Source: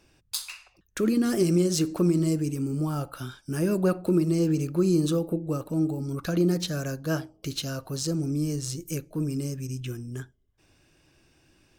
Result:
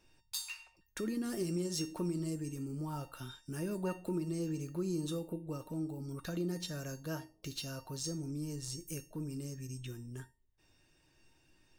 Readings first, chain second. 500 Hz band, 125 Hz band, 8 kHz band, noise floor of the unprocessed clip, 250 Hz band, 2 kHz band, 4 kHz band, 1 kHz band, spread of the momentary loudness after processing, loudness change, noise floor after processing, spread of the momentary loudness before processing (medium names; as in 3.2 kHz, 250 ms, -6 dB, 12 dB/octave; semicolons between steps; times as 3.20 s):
-13.0 dB, -12.5 dB, -8.5 dB, -65 dBFS, -13.0 dB, -10.0 dB, -8.5 dB, -9.0 dB, 8 LU, -12.5 dB, -71 dBFS, 12 LU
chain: in parallel at +0.5 dB: compression, threshold -32 dBFS, peak gain reduction 13.5 dB; on the sum: feedback comb 910 Hz, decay 0.3 s, mix 90%; trim +3.5 dB